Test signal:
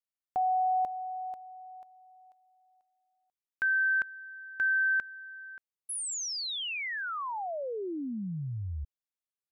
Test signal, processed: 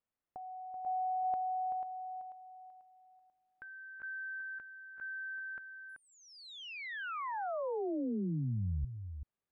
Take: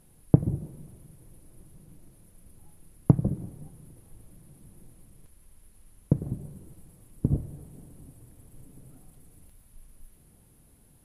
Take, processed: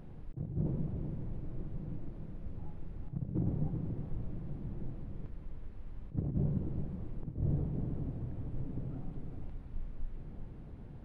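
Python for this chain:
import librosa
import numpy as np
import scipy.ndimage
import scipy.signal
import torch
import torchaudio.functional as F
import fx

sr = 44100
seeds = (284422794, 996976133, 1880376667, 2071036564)

y = fx.over_compress(x, sr, threshold_db=-40.0, ratio=-1.0)
y = fx.spacing_loss(y, sr, db_at_10k=43)
y = y + 10.0 ** (-8.5 / 20.0) * np.pad(y, (int(383 * sr / 1000.0), 0))[:len(y)]
y = y * 10.0 ** (4.0 / 20.0)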